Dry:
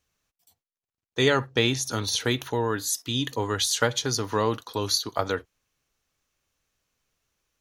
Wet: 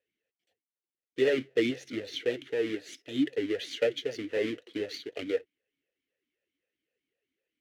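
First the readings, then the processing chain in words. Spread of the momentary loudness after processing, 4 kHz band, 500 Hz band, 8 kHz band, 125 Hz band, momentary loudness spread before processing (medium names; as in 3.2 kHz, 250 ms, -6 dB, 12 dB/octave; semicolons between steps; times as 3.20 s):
9 LU, -12.0 dB, -2.0 dB, -22.5 dB, -18.0 dB, 6 LU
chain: square wave that keeps the level; talking filter e-i 3.9 Hz; trim +1 dB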